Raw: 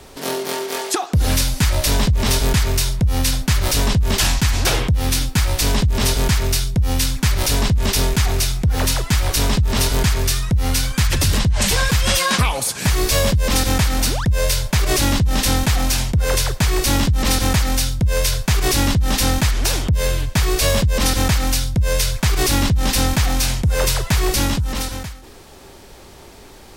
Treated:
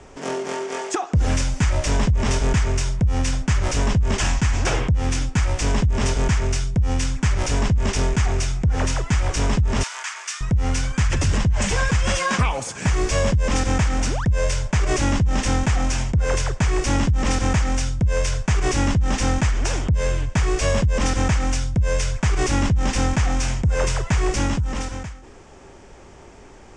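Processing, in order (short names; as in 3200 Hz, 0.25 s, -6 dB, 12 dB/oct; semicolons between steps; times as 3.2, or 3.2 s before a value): steep low-pass 7600 Hz 36 dB/oct; bell 4100 Hz -14 dB 0.6 oct; 9.83–10.41 HPF 1000 Hz 24 dB/oct; gain -2 dB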